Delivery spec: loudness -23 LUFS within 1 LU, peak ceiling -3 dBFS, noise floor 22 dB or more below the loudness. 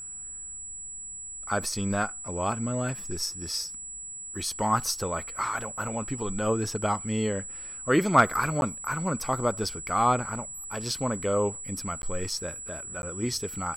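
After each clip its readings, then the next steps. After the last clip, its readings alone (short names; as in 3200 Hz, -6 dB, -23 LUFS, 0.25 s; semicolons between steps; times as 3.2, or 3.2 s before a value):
dropouts 3; longest dropout 11 ms; steady tone 7800 Hz; tone level -37 dBFS; loudness -29.0 LUFS; peak -7.5 dBFS; loudness target -23.0 LUFS
-> interpolate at 8.61/12.02/13.02, 11 ms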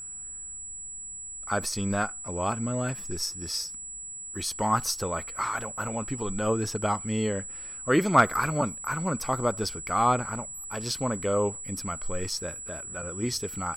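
dropouts 0; steady tone 7800 Hz; tone level -37 dBFS
-> notch 7800 Hz, Q 30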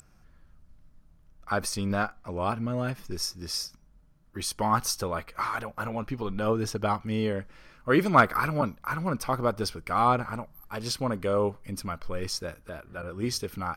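steady tone none; loudness -29.0 LUFS; peak -7.5 dBFS; loudness target -23.0 LUFS
-> gain +6 dB; limiter -3 dBFS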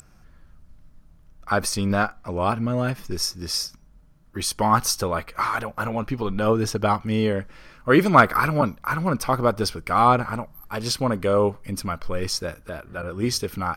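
loudness -23.0 LUFS; peak -3.0 dBFS; noise floor -53 dBFS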